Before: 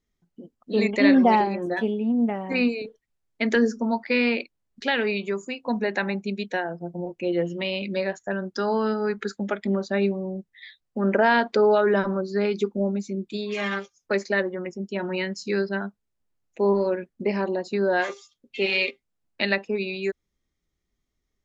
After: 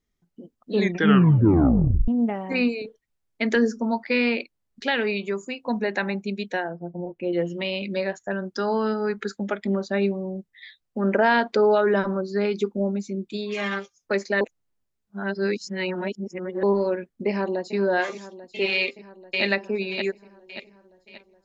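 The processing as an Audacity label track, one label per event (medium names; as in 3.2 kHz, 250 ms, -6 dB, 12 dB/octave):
0.740000	0.740000	tape stop 1.34 s
6.680000	7.330000	distance through air 350 m
14.410000	16.630000	reverse
17.280000	17.750000	echo throw 420 ms, feedback 75%, level -13 dB
18.750000	19.430000	echo throw 580 ms, feedback 40%, level -2 dB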